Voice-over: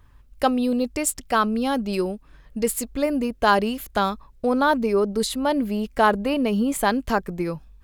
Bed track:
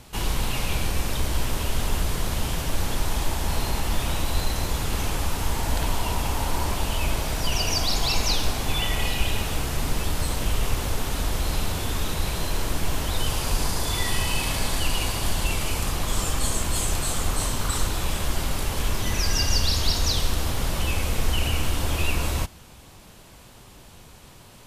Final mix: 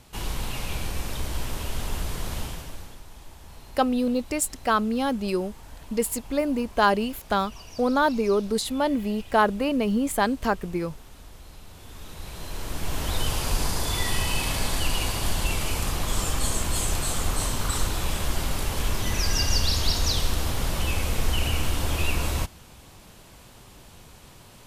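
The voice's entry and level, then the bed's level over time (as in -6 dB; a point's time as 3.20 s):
3.35 s, -2.0 dB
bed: 2.40 s -5 dB
3.03 s -20.5 dB
11.63 s -20.5 dB
13.09 s -1 dB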